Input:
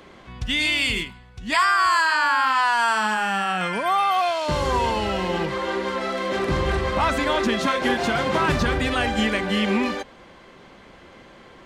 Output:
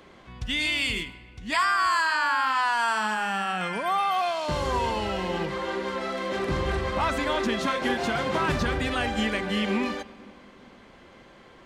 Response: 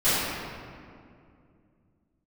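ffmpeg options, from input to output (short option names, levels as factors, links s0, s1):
-filter_complex "[0:a]asplit=2[s0][s1];[1:a]atrim=start_sample=2205,adelay=65[s2];[s1][s2]afir=irnorm=-1:irlink=0,volume=0.0158[s3];[s0][s3]amix=inputs=2:normalize=0,volume=0.596"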